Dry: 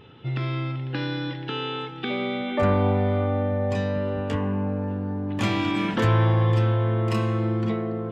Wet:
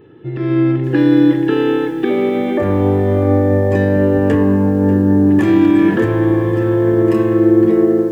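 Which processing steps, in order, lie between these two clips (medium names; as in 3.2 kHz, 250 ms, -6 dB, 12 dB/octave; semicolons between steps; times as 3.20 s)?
peak limiter -21 dBFS, peak gain reduction 10 dB; treble shelf 2.6 kHz +4 dB; small resonant body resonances 350/1700 Hz, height 15 dB, ringing for 30 ms; level rider gain up to 16.5 dB; peaking EQ 4.3 kHz -13 dB 2.2 oct; band-stop 1.5 kHz, Q 21; simulated room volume 2000 m³, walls furnished, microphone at 0.56 m; bit-crushed delay 589 ms, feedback 35%, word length 6-bit, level -14.5 dB; trim -1 dB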